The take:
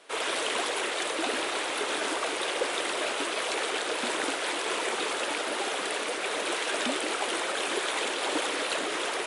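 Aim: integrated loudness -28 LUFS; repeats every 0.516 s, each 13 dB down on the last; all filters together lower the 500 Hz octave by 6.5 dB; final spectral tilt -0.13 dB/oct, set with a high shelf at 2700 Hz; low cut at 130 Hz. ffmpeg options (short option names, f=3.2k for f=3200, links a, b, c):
-af "highpass=130,equalizer=f=500:t=o:g=-8,highshelf=f=2.7k:g=-5,aecho=1:1:516|1032|1548:0.224|0.0493|0.0108,volume=4dB"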